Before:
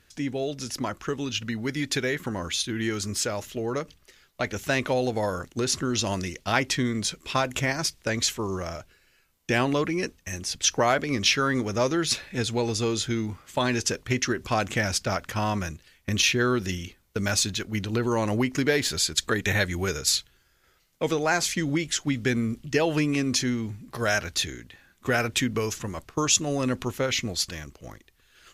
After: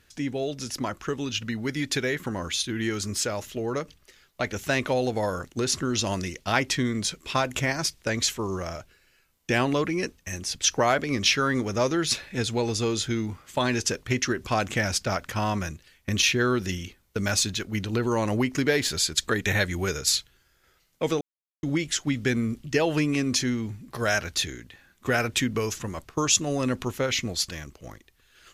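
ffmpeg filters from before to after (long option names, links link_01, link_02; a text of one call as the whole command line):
ffmpeg -i in.wav -filter_complex "[0:a]asplit=3[link_01][link_02][link_03];[link_01]atrim=end=21.21,asetpts=PTS-STARTPTS,afade=type=out:start_time=21.206:duration=0.004:curve=hsin[link_04];[link_02]atrim=start=21.21:end=21.63,asetpts=PTS-STARTPTS,volume=0[link_05];[link_03]atrim=start=21.63,asetpts=PTS-STARTPTS,afade=type=in:duration=0.004:curve=hsin[link_06];[link_04][link_05][link_06]concat=n=3:v=0:a=1" out.wav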